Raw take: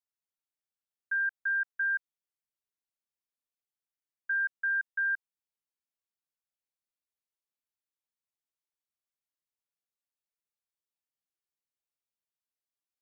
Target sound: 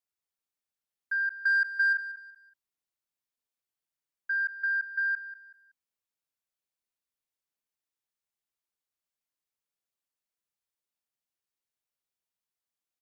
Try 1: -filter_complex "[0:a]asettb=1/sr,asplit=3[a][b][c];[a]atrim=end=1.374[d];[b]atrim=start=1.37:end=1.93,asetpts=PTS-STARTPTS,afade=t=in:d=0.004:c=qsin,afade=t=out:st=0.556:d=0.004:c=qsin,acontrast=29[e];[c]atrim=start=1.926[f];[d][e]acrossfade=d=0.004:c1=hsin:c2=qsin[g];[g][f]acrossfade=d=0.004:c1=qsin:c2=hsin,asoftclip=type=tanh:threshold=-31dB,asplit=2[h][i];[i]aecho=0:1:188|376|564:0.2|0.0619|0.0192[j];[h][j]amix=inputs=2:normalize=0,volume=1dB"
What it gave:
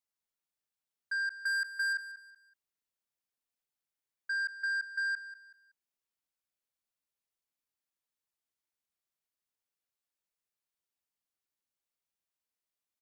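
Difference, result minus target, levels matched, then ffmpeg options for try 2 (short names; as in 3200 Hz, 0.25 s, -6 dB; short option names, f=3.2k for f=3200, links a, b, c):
soft clip: distortion +13 dB
-filter_complex "[0:a]asettb=1/sr,asplit=3[a][b][c];[a]atrim=end=1.374[d];[b]atrim=start=1.37:end=1.93,asetpts=PTS-STARTPTS,afade=t=in:d=0.004:c=qsin,afade=t=out:st=0.556:d=0.004:c=qsin,acontrast=29[e];[c]atrim=start=1.926[f];[d][e]acrossfade=d=0.004:c1=hsin:c2=qsin[g];[g][f]acrossfade=d=0.004:c1=qsin:c2=hsin,asoftclip=type=tanh:threshold=-19.5dB,asplit=2[h][i];[i]aecho=0:1:188|376|564:0.2|0.0619|0.0192[j];[h][j]amix=inputs=2:normalize=0,volume=1dB"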